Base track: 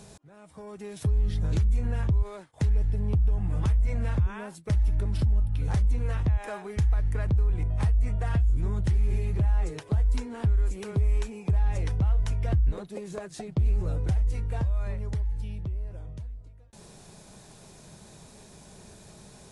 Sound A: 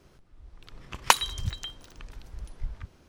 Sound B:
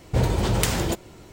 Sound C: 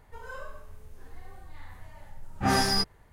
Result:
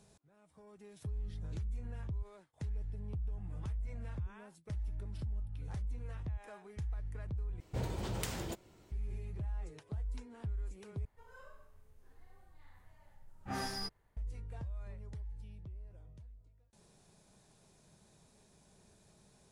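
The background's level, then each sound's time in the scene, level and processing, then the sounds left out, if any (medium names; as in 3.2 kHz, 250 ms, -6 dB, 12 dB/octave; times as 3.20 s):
base track -15.5 dB
7.60 s: replace with B -16 dB
11.05 s: replace with C -15 dB
not used: A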